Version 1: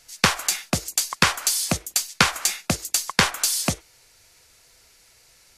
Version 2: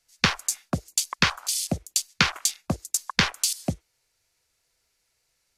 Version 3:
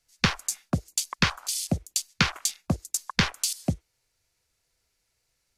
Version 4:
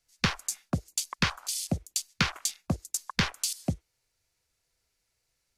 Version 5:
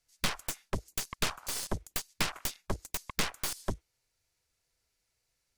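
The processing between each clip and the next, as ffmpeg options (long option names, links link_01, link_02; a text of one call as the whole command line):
ffmpeg -i in.wav -filter_complex "[0:a]afwtdn=0.0398,acrossover=split=350|1400[link_01][link_02][link_03];[link_02]alimiter=limit=-19dB:level=0:latency=1:release=164[link_04];[link_01][link_04][link_03]amix=inputs=3:normalize=0,volume=-1dB" out.wav
ffmpeg -i in.wav -af "lowshelf=frequency=260:gain=6.5,volume=-3dB" out.wav
ffmpeg -i in.wav -af "acontrast=42,volume=-8.5dB" out.wav
ffmpeg -i in.wav -af "aeval=exprs='0.299*(cos(1*acos(clip(val(0)/0.299,-1,1)))-cos(1*PI/2))+0.0237*(cos(3*acos(clip(val(0)/0.299,-1,1)))-cos(3*PI/2))+0.0668*(cos(6*acos(clip(val(0)/0.299,-1,1)))-cos(6*PI/2))+0.075*(cos(7*acos(clip(val(0)/0.299,-1,1)))-cos(7*PI/2))':channel_layout=same,volume=18dB,asoftclip=hard,volume=-18dB,volume=-2dB" out.wav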